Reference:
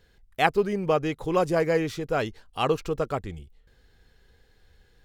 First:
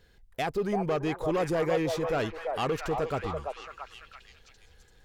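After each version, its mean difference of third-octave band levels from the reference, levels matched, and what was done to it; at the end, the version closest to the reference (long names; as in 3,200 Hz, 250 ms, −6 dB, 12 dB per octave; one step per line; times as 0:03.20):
5.0 dB: brickwall limiter −15.5 dBFS, peak gain reduction 11 dB
soft clipping −22 dBFS, distortion −14 dB
echo through a band-pass that steps 337 ms, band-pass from 730 Hz, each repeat 0.7 octaves, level −1 dB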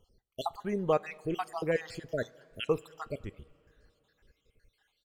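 7.0 dB: time-frequency cells dropped at random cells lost 63%
far-end echo of a speakerphone 210 ms, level −28 dB
coupled-rooms reverb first 0.23 s, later 3.2 s, from −18 dB, DRR 16 dB
level −4 dB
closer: first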